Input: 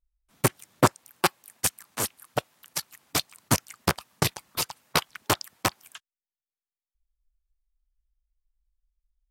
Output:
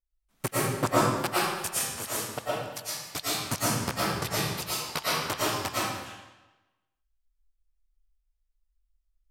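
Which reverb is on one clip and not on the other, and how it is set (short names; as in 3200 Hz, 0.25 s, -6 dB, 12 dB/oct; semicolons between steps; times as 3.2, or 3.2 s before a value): digital reverb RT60 1.1 s, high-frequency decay 0.9×, pre-delay 75 ms, DRR -9 dB; gain -9.5 dB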